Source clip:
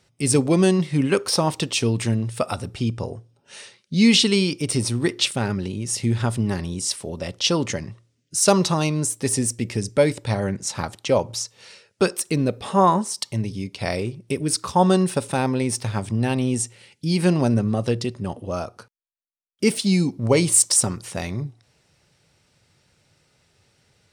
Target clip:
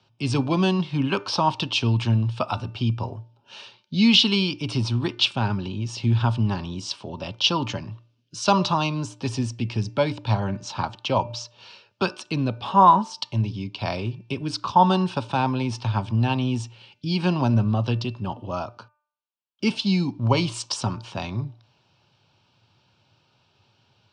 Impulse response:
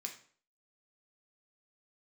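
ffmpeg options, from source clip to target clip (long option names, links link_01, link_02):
-filter_complex "[0:a]highpass=110,equalizer=frequency=110:width_type=q:width=4:gain=7,equalizer=frequency=160:width_type=q:width=4:gain=-4,equalizer=frequency=470:width_type=q:width=4:gain=-7,equalizer=frequency=950:width_type=q:width=4:gain=8,equalizer=frequency=1900:width_type=q:width=4:gain=-7,equalizer=frequency=3000:width_type=q:width=4:gain=5,lowpass=frequency=4800:width=0.5412,lowpass=frequency=4800:width=1.3066,bandreject=frequency=2000:width=6.7,bandreject=frequency=298.1:width_type=h:width=4,bandreject=frequency=596.2:width_type=h:width=4,bandreject=frequency=894.3:width_type=h:width=4,bandreject=frequency=1192.4:width_type=h:width=4,bandreject=frequency=1490.5:width_type=h:width=4,bandreject=frequency=1788.6:width_type=h:width=4,bandreject=frequency=2086.7:width_type=h:width=4,bandreject=frequency=2384.8:width_type=h:width=4,bandreject=frequency=2682.9:width_type=h:width=4,acrossover=split=320|510|2200[link_01][link_02][link_03][link_04];[link_02]acompressor=threshold=-45dB:ratio=6[link_05];[link_01][link_05][link_03][link_04]amix=inputs=4:normalize=0"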